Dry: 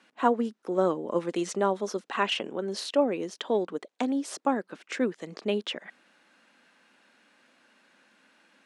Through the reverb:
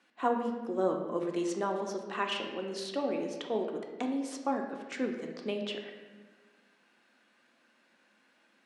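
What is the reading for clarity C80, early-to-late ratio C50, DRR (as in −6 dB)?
7.0 dB, 5.0 dB, 2.0 dB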